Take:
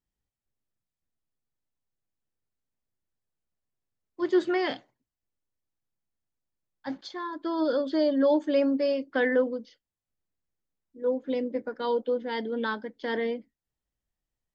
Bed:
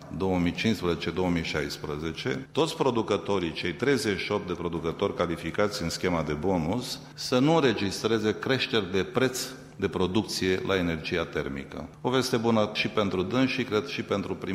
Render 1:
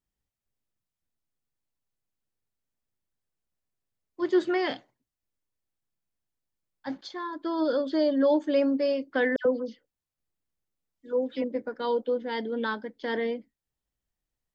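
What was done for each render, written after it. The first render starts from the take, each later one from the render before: 9.36–11.44 s: phase dispersion lows, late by 94 ms, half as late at 1.8 kHz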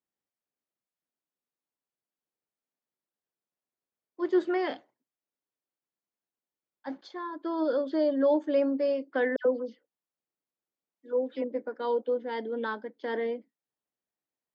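high-pass 280 Hz 12 dB/octave; treble shelf 2.2 kHz -10.5 dB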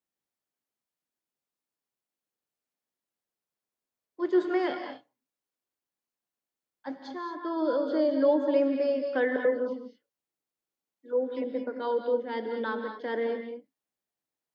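gated-style reverb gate 250 ms rising, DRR 5 dB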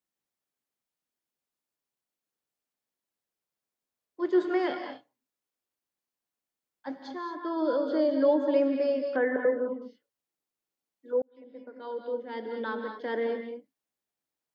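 9.16–9.82 s: low-pass 2.1 kHz 24 dB/octave; 11.22–12.99 s: fade in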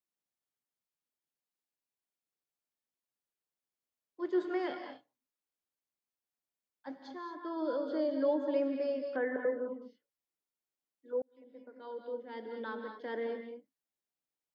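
trim -7 dB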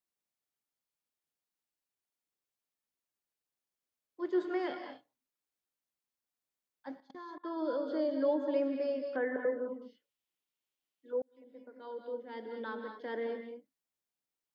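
7.00–7.45 s: level held to a coarse grid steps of 23 dB; 9.81–11.16 s: peaking EQ 3 kHz +8.5 dB

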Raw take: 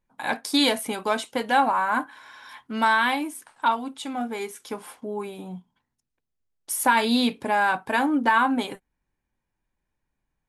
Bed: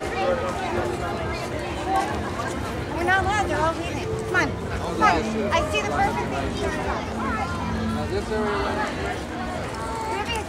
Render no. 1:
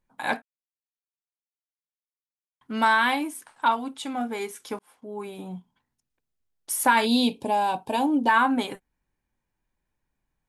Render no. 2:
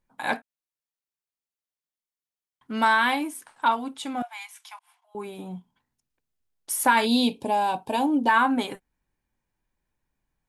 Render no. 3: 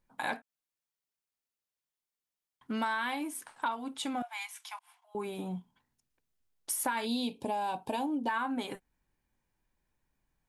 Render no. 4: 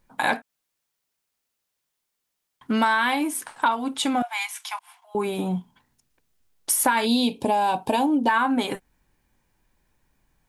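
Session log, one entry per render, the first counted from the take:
0.42–2.61 s: mute; 4.79–5.40 s: fade in; 7.06–8.29 s: high-order bell 1.6 kHz -15.5 dB 1.1 oct
4.22–5.15 s: rippled Chebyshev high-pass 680 Hz, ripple 6 dB
compression 4:1, threshold -32 dBFS, peak gain reduction 14.5 dB
trim +11.5 dB

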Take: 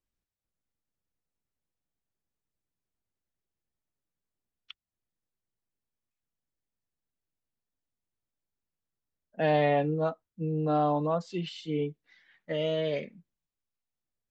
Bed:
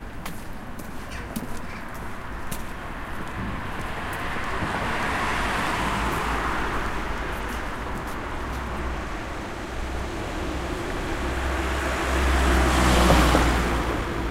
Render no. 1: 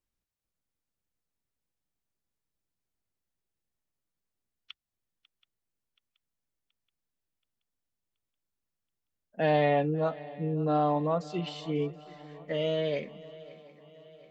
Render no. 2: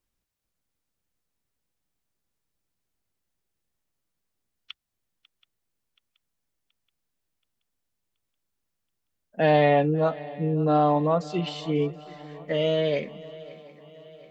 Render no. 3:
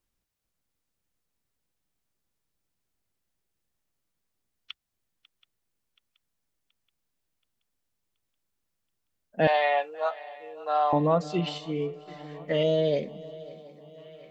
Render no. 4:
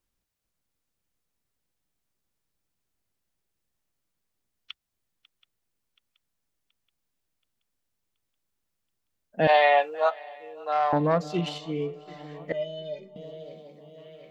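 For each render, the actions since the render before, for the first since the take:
shuffle delay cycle 727 ms, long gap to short 3:1, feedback 50%, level -20 dB
trim +5.5 dB
9.47–10.93 s: high-pass 670 Hz 24 dB/octave; 11.58–12.08 s: feedback comb 62 Hz, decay 0.55 s; 12.63–13.98 s: high-order bell 1.7 kHz -9.5 dB
9.49–10.10 s: gain +5 dB; 10.72–11.62 s: self-modulated delay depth 0.11 ms; 12.52–13.16 s: inharmonic resonator 180 Hz, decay 0.24 s, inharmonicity 0.03

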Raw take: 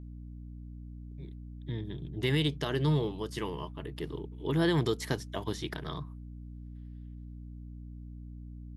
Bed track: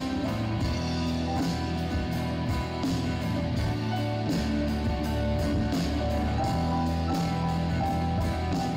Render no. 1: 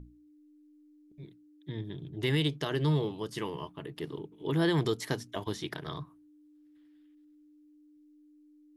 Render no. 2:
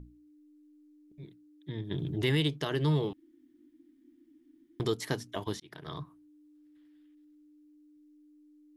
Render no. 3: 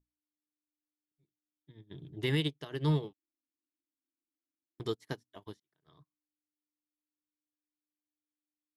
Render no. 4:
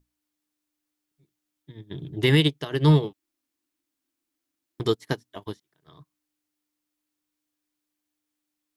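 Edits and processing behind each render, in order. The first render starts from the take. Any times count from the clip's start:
hum notches 60/120/180/240 Hz
1.91–2.41 s: level flattener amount 50%; 3.13–4.80 s: room tone; 5.60–6.00 s: fade in
upward expansion 2.5:1, over -51 dBFS
trim +11.5 dB

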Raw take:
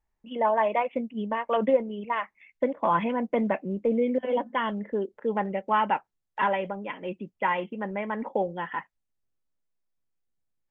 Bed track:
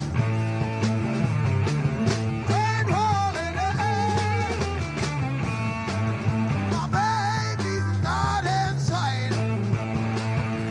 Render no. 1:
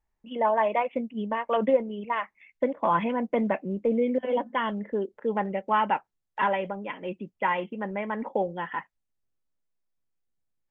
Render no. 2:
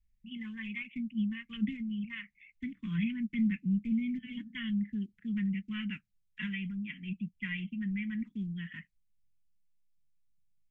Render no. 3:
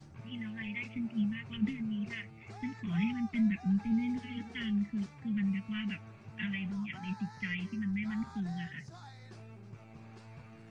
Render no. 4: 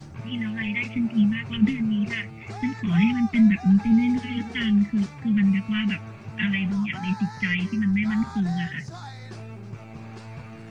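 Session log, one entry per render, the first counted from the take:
no audible change
elliptic band-stop 200–2200 Hz, stop band 70 dB; tilt EQ -1.5 dB/octave
add bed track -26 dB
trim +12 dB

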